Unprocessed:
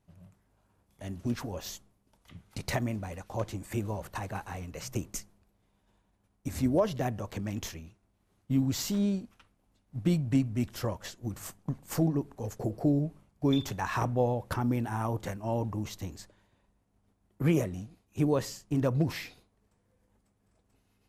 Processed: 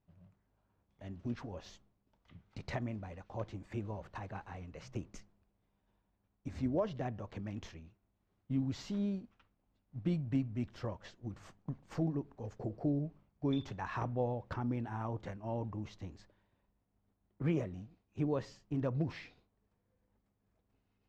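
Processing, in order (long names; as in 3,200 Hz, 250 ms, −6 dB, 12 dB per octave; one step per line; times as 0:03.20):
high-frequency loss of the air 170 metres
level −7 dB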